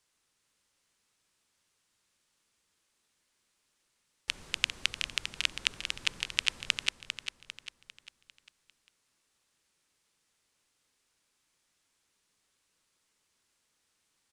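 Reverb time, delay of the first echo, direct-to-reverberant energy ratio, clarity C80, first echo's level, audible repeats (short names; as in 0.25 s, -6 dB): none, 0.399 s, none, none, -8.5 dB, 4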